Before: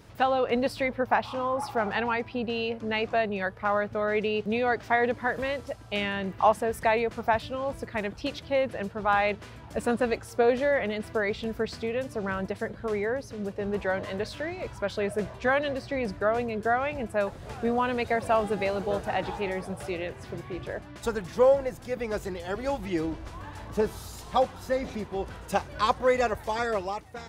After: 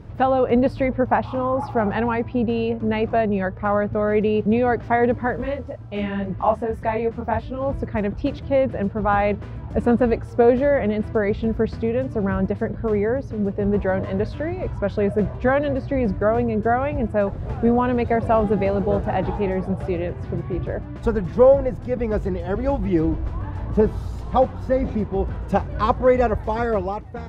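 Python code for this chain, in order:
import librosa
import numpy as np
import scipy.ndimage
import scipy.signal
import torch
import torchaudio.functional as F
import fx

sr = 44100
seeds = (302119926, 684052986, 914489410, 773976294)

y = fx.lowpass(x, sr, hz=1000.0, slope=6)
y = fx.low_shelf(y, sr, hz=220.0, db=10.0)
y = fx.detune_double(y, sr, cents=fx.line((5.36, 39.0), (7.6, 20.0)), at=(5.36, 7.6), fade=0.02)
y = y * 10.0 ** (6.5 / 20.0)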